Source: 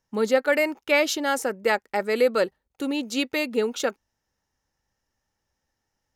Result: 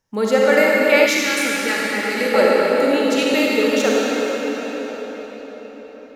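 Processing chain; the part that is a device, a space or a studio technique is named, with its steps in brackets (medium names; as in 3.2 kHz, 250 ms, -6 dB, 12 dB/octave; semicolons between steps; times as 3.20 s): cathedral (reverberation RT60 5.6 s, pre-delay 37 ms, DRR -5.5 dB); 1.06–2.34 s: peaking EQ 670 Hz -14.5 dB 1.2 oct; trim +3 dB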